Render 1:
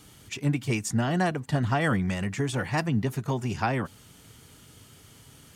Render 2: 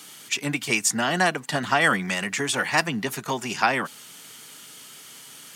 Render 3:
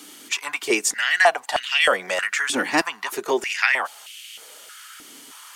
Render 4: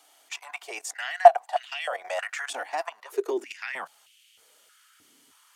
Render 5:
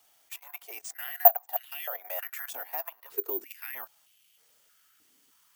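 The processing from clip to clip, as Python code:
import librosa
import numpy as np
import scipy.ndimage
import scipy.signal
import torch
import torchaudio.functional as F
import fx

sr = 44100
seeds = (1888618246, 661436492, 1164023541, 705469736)

y1 = scipy.signal.sosfilt(scipy.signal.butter(4, 160.0, 'highpass', fs=sr, output='sos'), x)
y1 = fx.tilt_shelf(y1, sr, db=-7.0, hz=680.0)
y1 = y1 * 10.0 ** (4.5 / 20.0)
y2 = fx.filter_held_highpass(y1, sr, hz=3.2, low_hz=280.0, high_hz=2700.0)
y3 = fx.level_steps(y2, sr, step_db=13)
y3 = fx.filter_sweep_highpass(y3, sr, from_hz=700.0, to_hz=92.0, start_s=2.87, end_s=4.17, q=6.3)
y3 = y3 * 10.0 ** (-8.5 / 20.0)
y4 = (np.kron(y3[::3], np.eye(3)[0]) * 3)[:len(y3)]
y4 = y4 * 10.0 ** (-9.5 / 20.0)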